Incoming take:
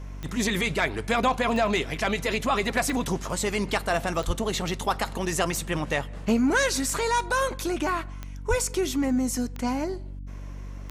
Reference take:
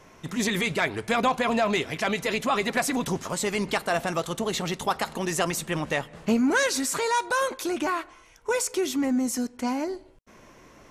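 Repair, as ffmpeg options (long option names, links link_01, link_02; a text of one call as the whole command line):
ffmpeg -i in.wav -filter_complex "[0:a]adeclick=threshold=4,bandreject=frequency=47.8:width_type=h:width=4,bandreject=frequency=95.6:width_type=h:width=4,bandreject=frequency=143.4:width_type=h:width=4,bandreject=frequency=191.2:width_type=h:width=4,bandreject=frequency=239:width_type=h:width=4,bandreject=frequency=286.8:width_type=h:width=4,asplit=3[link_01][link_02][link_03];[link_01]afade=type=out:start_time=4.26:duration=0.02[link_04];[link_02]highpass=frequency=140:width=0.5412,highpass=frequency=140:width=1.3066,afade=type=in:start_time=4.26:duration=0.02,afade=type=out:start_time=4.38:duration=0.02[link_05];[link_03]afade=type=in:start_time=4.38:duration=0.02[link_06];[link_04][link_05][link_06]amix=inputs=3:normalize=0,asplit=3[link_07][link_08][link_09];[link_07]afade=type=out:start_time=8.49:duration=0.02[link_10];[link_08]highpass=frequency=140:width=0.5412,highpass=frequency=140:width=1.3066,afade=type=in:start_time=8.49:duration=0.02,afade=type=out:start_time=8.61:duration=0.02[link_11];[link_09]afade=type=in:start_time=8.61:duration=0.02[link_12];[link_10][link_11][link_12]amix=inputs=3:normalize=0" out.wav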